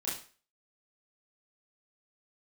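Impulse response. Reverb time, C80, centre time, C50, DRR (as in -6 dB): 0.40 s, 10.5 dB, 41 ms, 5.5 dB, -8.5 dB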